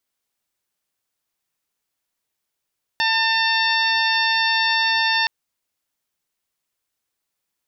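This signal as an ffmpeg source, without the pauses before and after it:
ffmpeg -f lavfi -i "aevalsrc='0.0708*sin(2*PI*899*t)+0.0944*sin(2*PI*1798*t)+0.0562*sin(2*PI*2697*t)+0.0596*sin(2*PI*3596*t)+0.0501*sin(2*PI*4495*t)+0.0398*sin(2*PI*5394*t)':duration=2.27:sample_rate=44100" out.wav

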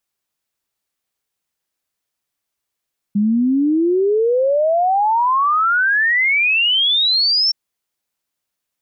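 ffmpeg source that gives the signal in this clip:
ffmpeg -f lavfi -i "aevalsrc='0.237*clip(min(t,4.37-t)/0.01,0,1)*sin(2*PI*200*4.37/log(5500/200)*(exp(log(5500/200)*t/4.37)-1))':duration=4.37:sample_rate=44100" out.wav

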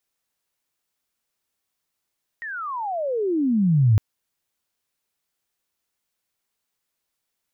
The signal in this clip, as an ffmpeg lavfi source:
ffmpeg -f lavfi -i "aevalsrc='pow(10,(-29.5+17.5*t/1.56)/20)*sin(2*PI*1900*1.56/log(100/1900)*(exp(log(100/1900)*t/1.56)-1))':duration=1.56:sample_rate=44100" out.wav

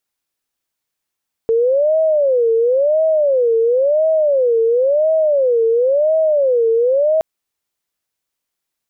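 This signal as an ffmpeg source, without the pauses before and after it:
ffmpeg -f lavfi -i "aevalsrc='0.282*sin(2*PI*(545.5*t-93.5/(2*PI*0.96)*sin(2*PI*0.96*t)))':duration=5.72:sample_rate=44100" out.wav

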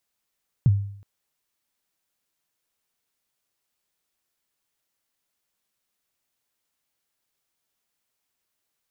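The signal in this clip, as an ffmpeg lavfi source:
ffmpeg -f lavfi -i "aevalsrc='0.282*pow(10,-3*t/0.62)*sin(2*PI*(150*0.034/log(100/150)*(exp(log(100/150)*min(t,0.034)/0.034)-1)+100*max(t-0.034,0)))':duration=0.37:sample_rate=44100" out.wav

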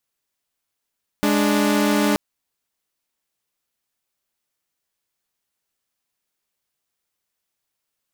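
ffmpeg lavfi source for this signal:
ffmpeg -f lavfi -i "aevalsrc='0.15*((2*mod(207.65*t,1)-1)+(2*mod(293.66*t,1)-1))':duration=0.93:sample_rate=44100" out.wav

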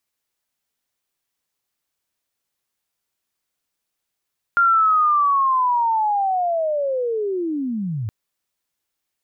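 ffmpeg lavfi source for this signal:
ffmpeg -f lavfi -i "aevalsrc='pow(10,(-12-10.5*t/3.52)/20)*sin(2*PI*(1400*t-1301*t*t/(2*3.52)))':duration=3.52:sample_rate=44100" out.wav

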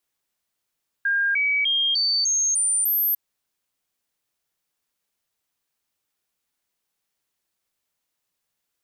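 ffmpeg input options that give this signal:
ffmpeg -f lavfi -i "aevalsrc='0.119*clip(min(mod(t,0.3),0.3-mod(t,0.3))/0.005,0,1)*sin(2*PI*1610*pow(2,floor(t/0.3)/2)*mod(t,0.3))':duration=2.1:sample_rate=44100" out.wav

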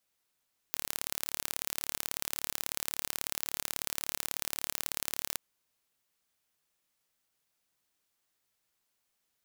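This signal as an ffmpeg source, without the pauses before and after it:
ffmpeg -f lavfi -i "aevalsrc='0.596*eq(mod(n,1212),0)*(0.5+0.5*eq(mod(n,2424),0))':duration=4.62:sample_rate=44100" out.wav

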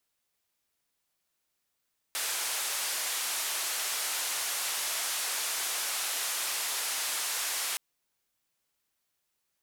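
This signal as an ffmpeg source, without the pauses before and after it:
ffmpeg -f lavfi -i "anoisesrc=color=white:duration=5.62:sample_rate=44100:seed=1,highpass=frequency=670,lowpass=frequency=12000,volume=-24.8dB" out.wav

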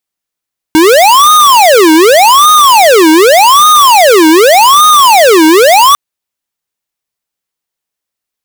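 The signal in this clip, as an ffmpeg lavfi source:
ffmpeg -f lavfi -i "aevalsrc='0.668*(2*lt(mod((776*t-464/(2*PI*0.85)*sin(2*PI*0.85*t)),1),0.5)-1)':duration=5.2:sample_rate=44100" out.wav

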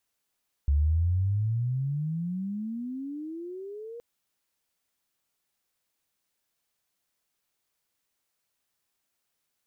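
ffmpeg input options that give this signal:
ffmpeg -f lavfi -i "aevalsrc='pow(10,(-19.5-18.5*t/3.32)/20)*sin(2*PI*69.2*3.32/(33.5*log(2)/12)*(exp(33.5*log(2)/12*t/3.32)-1))':duration=3.32:sample_rate=44100" out.wav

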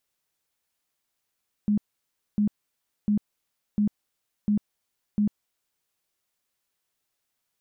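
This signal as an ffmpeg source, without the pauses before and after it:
ffmpeg -f lavfi -i "aevalsrc='0.112*sin(2*PI*208*mod(t,0.7))*lt(mod(t,0.7),20/208)':duration=4.2:sample_rate=44100" out.wav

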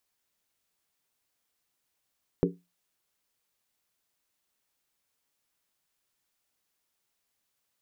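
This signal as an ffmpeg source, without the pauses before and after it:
ffmpeg -f lavfi -i "aevalsrc='0.0794*pow(10,-3*t/0.25)*sin(2*PI*176*t)+0.075*pow(10,-3*t/0.198)*sin(2*PI*280.5*t)+0.0708*pow(10,-3*t/0.171)*sin(2*PI*375.9*t)+0.0668*pow(10,-3*t/0.165)*sin(2*PI*404.1*t)+0.0631*pow(10,-3*t/0.153)*sin(2*PI*466.9*t)':duration=0.63:sample_rate=44100" out.wav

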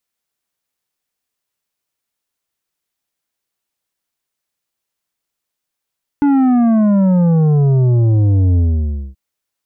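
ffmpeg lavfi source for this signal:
ffmpeg -f lavfi -i "aevalsrc='0.316*clip((2.93-t)/0.58,0,1)*tanh(2.66*sin(2*PI*290*2.93/log(65/290)*(exp(log(65/290)*t/2.93)-1)))/tanh(2.66)':duration=2.93:sample_rate=44100" out.wav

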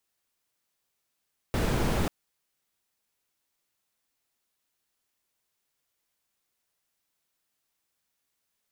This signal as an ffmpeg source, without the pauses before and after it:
ffmpeg -f lavfi -i "anoisesrc=color=brown:amplitude=0.234:duration=0.54:sample_rate=44100:seed=1" out.wav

